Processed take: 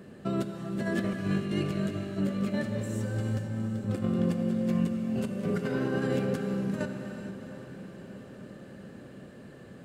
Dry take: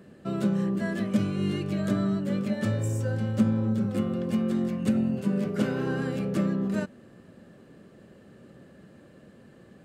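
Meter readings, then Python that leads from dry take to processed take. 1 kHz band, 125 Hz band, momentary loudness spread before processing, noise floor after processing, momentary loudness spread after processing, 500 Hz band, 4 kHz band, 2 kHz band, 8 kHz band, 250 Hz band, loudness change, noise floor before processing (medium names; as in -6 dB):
-1.5 dB, -2.5 dB, 3 LU, -48 dBFS, 18 LU, -1.0 dB, -1.5 dB, -0.5 dB, -3.0 dB, -3.5 dB, -3.0 dB, -53 dBFS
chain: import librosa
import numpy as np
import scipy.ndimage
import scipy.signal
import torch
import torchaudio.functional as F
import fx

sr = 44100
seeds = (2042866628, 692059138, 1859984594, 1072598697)

p1 = fx.over_compress(x, sr, threshold_db=-30.0, ratio=-0.5)
p2 = p1 + fx.echo_diffused(p1, sr, ms=736, feedback_pct=54, wet_db=-13.5, dry=0)
p3 = fx.rev_gated(p2, sr, seeds[0], gate_ms=490, shape='flat', drr_db=4.5)
y = p3 * 10.0 ** (-1.0 / 20.0)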